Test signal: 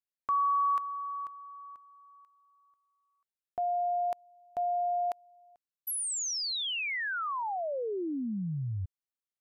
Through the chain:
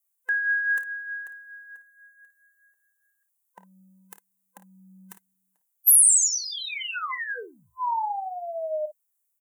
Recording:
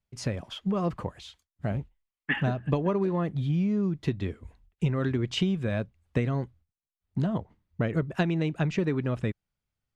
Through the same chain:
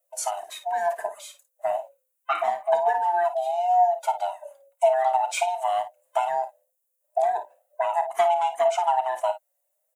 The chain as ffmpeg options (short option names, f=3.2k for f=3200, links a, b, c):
-af "afftfilt=real='real(if(lt(b,1008),b+24*(1-2*mod(floor(b/24),2)),b),0)':imag='imag(if(lt(b,1008),b+24*(1-2*mod(floor(b/24),2)),b),0)':win_size=2048:overlap=0.75,acontrast=74,flanger=delay=1.4:depth=5.7:regen=24:speed=0.26:shape=triangular,highpass=f=730:t=q:w=1.8,aecho=1:1:29|54:0.168|0.266,aexciter=amount=8:drive=5.8:freq=6.8k,volume=-3.5dB"